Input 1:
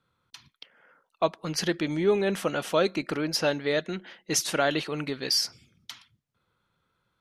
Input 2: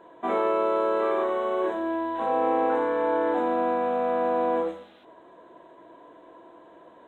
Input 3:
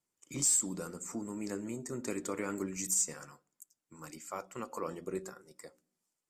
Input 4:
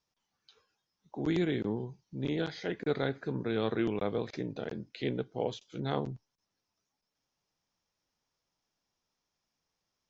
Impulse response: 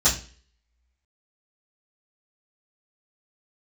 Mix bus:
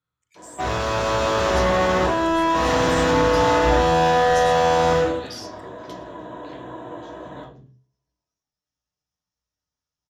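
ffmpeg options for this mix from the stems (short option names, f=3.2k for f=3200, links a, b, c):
-filter_complex "[0:a]acompressor=threshold=-29dB:ratio=6,volume=-14dB,asplit=2[a][b];[b]volume=-17.5dB[c];[1:a]volume=31.5dB,asoftclip=hard,volume=-31.5dB,adelay=350,volume=-0.5dB,asplit=2[d][e];[e]volume=-7dB[f];[2:a]highpass=f=1.8k:t=q:w=7.5,volume=-19dB[g];[3:a]acompressor=threshold=-37dB:ratio=2,adelay=1500,volume=-16dB,asplit=2[h][i];[i]volume=-14dB[j];[4:a]atrim=start_sample=2205[k];[c][f][j]amix=inputs=3:normalize=0[l];[l][k]afir=irnorm=-1:irlink=0[m];[a][d][g][h][m]amix=inputs=5:normalize=0,bandreject=f=790:w=21,dynaudnorm=f=410:g=5:m=7dB"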